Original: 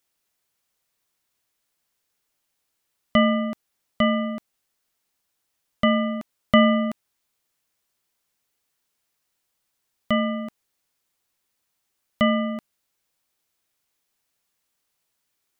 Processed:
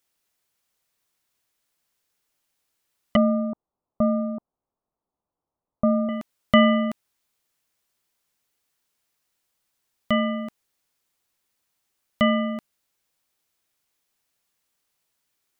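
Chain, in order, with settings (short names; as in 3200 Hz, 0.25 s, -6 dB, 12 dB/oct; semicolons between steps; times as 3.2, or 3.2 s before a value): 3.16–6.09 steep low-pass 1100 Hz 36 dB/oct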